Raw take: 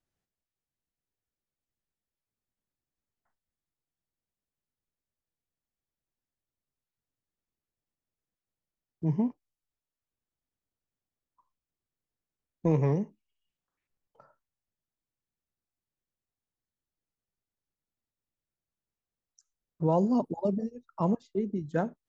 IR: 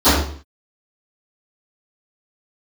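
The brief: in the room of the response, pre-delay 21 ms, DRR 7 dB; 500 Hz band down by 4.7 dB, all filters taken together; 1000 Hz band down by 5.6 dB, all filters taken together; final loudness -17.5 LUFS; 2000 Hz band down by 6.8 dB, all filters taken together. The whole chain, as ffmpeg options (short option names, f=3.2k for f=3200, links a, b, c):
-filter_complex "[0:a]equalizer=f=500:t=o:g=-4.5,equalizer=f=1k:t=o:g=-4,equalizer=f=2k:t=o:g=-7.5,asplit=2[a][b];[1:a]atrim=start_sample=2205,adelay=21[c];[b][c]afir=irnorm=-1:irlink=0,volume=-33.5dB[d];[a][d]amix=inputs=2:normalize=0,volume=12.5dB"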